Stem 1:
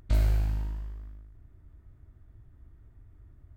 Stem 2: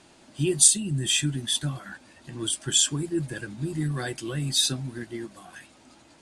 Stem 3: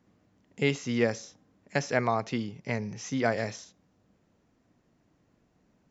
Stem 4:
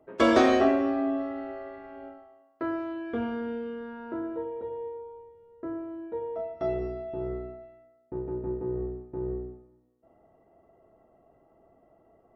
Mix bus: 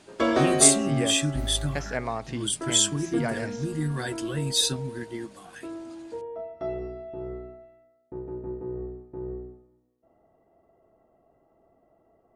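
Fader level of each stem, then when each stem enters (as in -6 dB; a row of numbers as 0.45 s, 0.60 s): -8.5 dB, -0.5 dB, -4.0 dB, -2.5 dB; 1.25 s, 0.00 s, 0.00 s, 0.00 s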